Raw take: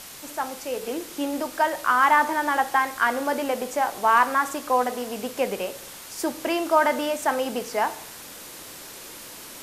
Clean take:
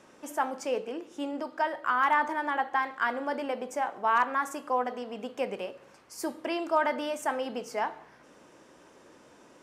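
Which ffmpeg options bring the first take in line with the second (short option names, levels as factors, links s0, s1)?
-af "adeclick=t=4,afwtdn=0.01,asetnsamples=n=441:p=0,asendcmd='0.82 volume volume -6.5dB',volume=1"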